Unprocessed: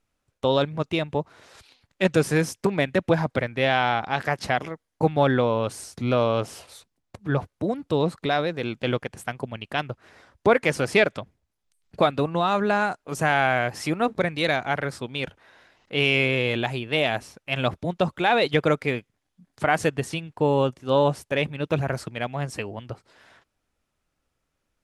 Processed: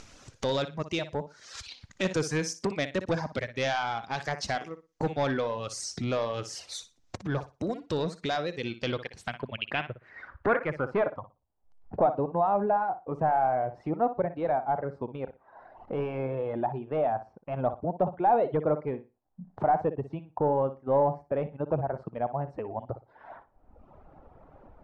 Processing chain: reverb removal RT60 0.93 s; upward compressor, threshold -23 dBFS; flutter echo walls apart 10.2 m, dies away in 0.26 s; saturation -15 dBFS, distortion -14 dB; low-pass sweep 6.2 kHz -> 810 Hz, 8.50–11.36 s; trim -5 dB

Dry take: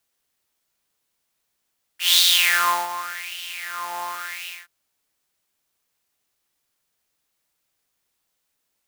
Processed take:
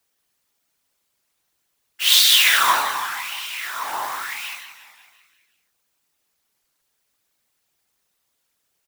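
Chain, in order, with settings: feedback delay 177 ms, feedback 54%, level -11 dB; whisper effect; warped record 33 1/3 rpm, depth 100 cents; trim +2.5 dB

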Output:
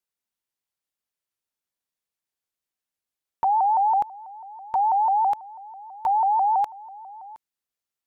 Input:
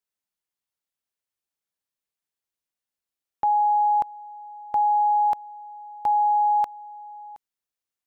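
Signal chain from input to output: 4.69–7.31 s: peaking EQ 270 Hz -7 dB 0.92 oct; vibrato with a chosen wave saw up 6.1 Hz, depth 160 cents

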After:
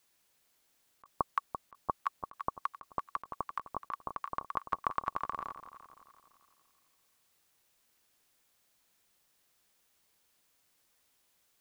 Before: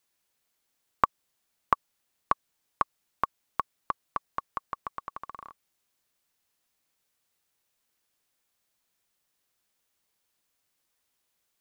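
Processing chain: on a send: echo whose repeats swap between lows and highs 170 ms, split 960 Hz, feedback 62%, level -9.5 dB; on the sum: compressor with a negative ratio -33 dBFS, ratio -0.5

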